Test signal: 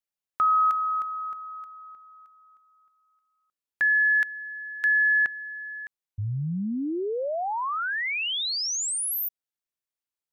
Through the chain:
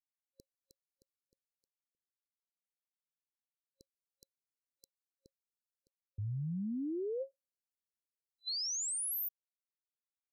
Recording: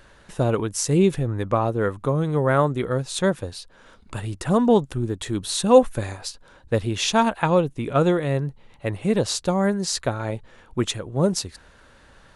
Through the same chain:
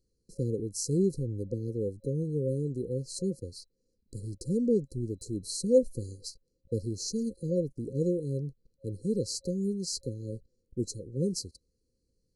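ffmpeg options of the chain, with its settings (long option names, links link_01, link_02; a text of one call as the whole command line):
ffmpeg -i in.wav -af "agate=range=-14dB:threshold=-44dB:ratio=16:release=38:detection=rms,afftfilt=real='re*(1-between(b*sr/4096,540,4000))':imag='im*(1-between(b*sr/4096,540,4000))':win_size=4096:overlap=0.75,volume=-8.5dB" out.wav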